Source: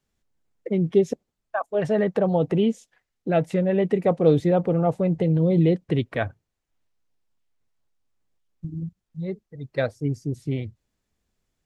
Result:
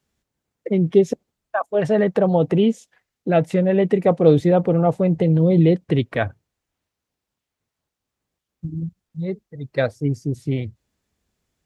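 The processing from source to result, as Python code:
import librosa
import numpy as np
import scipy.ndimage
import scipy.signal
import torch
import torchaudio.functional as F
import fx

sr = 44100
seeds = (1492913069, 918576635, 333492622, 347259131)

y = scipy.signal.sosfilt(scipy.signal.butter(2, 44.0, 'highpass', fs=sr, output='sos'), x)
y = y * librosa.db_to_amplitude(4.0)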